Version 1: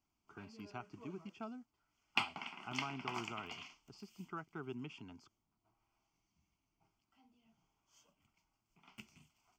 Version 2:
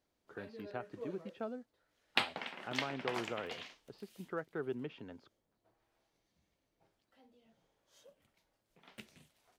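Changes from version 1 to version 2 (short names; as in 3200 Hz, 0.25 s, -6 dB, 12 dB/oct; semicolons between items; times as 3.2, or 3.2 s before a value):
speech: add air absorption 190 m; master: remove fixed phaser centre 2600 Hz, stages 8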